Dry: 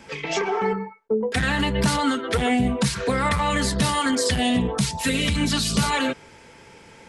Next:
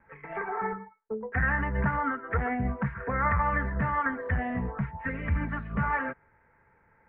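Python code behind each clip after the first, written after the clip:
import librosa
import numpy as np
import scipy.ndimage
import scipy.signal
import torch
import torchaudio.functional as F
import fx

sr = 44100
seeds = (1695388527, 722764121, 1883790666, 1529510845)

y = scipy.signal.sosfilt(scipy.signal.butter(8, 1900.0, 'lowpass', fs=sr, output='sos'), x)
y = fx.peak_eq(y, sr, hz=320.0, db=-13.0, octaves=2.7)
y = fx.upward_expand(y, sr, threshold_db=-48.0, expansion=1.5)
y = y * 10.0 ** (3.0 / 20.0)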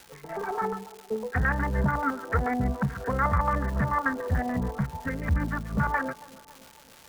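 y = fx.filter_lfo_lowpass(x, sr, shape='square', hz=6.9, low_hz=650.0, high_hz=1700.0, q=0.99)
y = fx.dmg_crackle(y, sr, seeds[0], per_s=390.0, level_db=-39.0)
y = fx.echo_wet_bandpass(y, sr, ms=278, feedback_pct=56, hz=510.0, wet_db=-17.5)
y = y * 10.0 ** (2.5 / 20.0)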